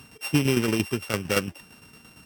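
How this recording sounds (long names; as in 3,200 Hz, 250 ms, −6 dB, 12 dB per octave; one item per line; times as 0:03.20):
a buzz of ramps at a fixed pitch in blocks of 16 samples
tremolo saw down 8.8 Hz, depth 60%
AAC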